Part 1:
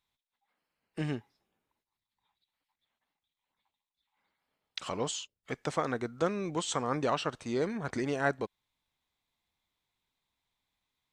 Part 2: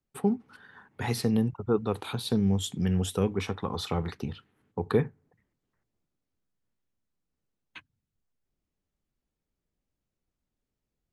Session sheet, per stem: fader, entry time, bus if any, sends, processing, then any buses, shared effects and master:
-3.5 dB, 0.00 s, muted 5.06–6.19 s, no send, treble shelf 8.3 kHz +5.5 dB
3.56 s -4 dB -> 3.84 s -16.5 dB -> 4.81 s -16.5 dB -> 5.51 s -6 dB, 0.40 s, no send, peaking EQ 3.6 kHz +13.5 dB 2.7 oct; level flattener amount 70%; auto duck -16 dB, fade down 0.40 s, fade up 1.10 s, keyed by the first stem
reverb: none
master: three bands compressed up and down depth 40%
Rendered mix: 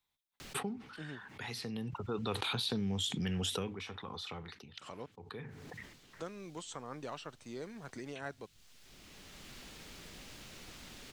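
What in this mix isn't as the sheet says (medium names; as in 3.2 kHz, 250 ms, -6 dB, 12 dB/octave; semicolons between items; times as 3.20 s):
stem 1 -3.5 dB -> -14.5 dB; stem 2 -4.0 dB -> -12.0 dB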